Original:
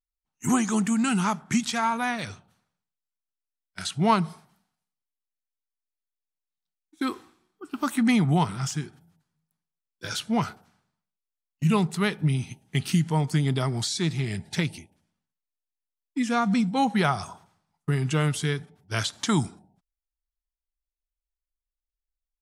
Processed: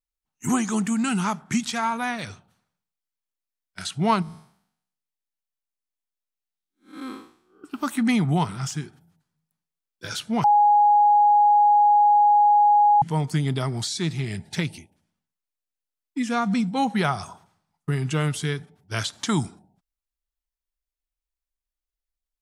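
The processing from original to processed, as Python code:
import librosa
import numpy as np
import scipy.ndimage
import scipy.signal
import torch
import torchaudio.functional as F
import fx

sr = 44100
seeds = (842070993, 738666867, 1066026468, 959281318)

y = fx.spec_blur(x, sr, span_ms=193.0, at=(4.22, 7.64))
y = fx.edit(y, sr, fx.bleep(start_s=10.44, length_s=2.58, hz=829.0, db=-13.0), tone=tone)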